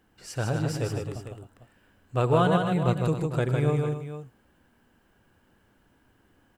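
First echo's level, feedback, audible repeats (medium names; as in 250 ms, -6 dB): -17.0 dB, no regular repeats, 4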